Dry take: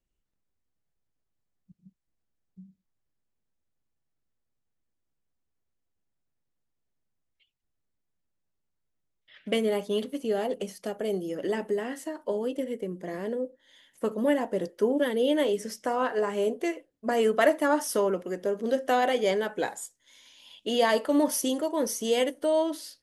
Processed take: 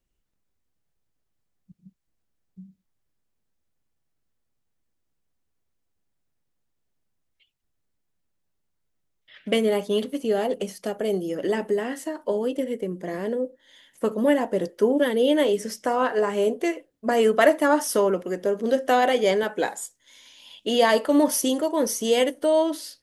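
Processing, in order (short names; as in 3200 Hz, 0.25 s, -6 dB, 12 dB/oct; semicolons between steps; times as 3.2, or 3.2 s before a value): 19.43–19.83 HPF 150 Hz; gain +4.5 dB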